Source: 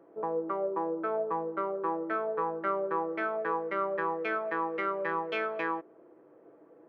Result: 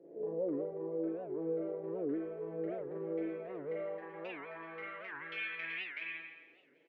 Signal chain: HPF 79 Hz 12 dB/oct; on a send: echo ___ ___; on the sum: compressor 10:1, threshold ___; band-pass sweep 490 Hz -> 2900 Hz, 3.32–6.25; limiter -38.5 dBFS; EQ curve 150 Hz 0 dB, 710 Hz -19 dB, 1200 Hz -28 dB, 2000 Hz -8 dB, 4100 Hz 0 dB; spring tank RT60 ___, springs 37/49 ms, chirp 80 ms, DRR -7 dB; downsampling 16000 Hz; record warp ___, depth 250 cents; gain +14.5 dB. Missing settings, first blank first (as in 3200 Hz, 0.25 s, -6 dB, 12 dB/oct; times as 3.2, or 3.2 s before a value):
0.377 s, -9 dB, -37 dBFS, 1.1 s, 78 rpm